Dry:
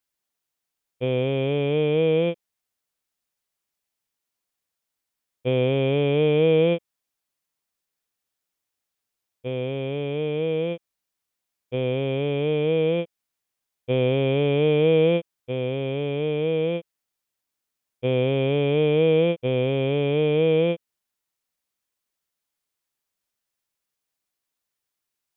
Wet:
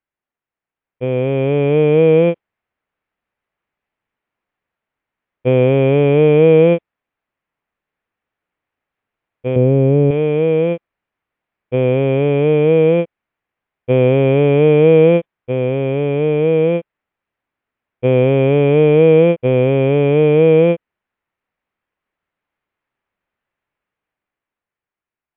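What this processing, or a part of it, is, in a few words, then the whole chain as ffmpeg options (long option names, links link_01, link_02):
action camera in a waterproof case: -filter_complex "[0:a]asettb=1/sr,asplit=3[link_01][link_02][link_03];[link_01]atrim=end=9.564[link_04];[link_02]atrim=start=9.56:end=10.11,asetpts=PTS-STARTPTS,afade=type=in:duration=0.004:curve=qsin,afade=type=out:start_time=0.546:duration=0.004:curve=qsin,tiltshelf=frequency=750:gain=9[link_05];[link_03]atrim=start=10.106[link_06];[link_04][link_05]acrossfade=duration=0.004:curve1=hsin:curve2=qsin[link_07];[link_07][link_06]acrossfade=duration=0.004:curve1=qsin:curve2=hsin,lowpass=frequency=2400:width=0.5412,lowpass=frequency=2400:width=1.3066,dynaudnorm=framelen=200:gausssize=13:maxgain=8.5dB,volume=2dB" -ar 22050 -c:a aac -b:a 96k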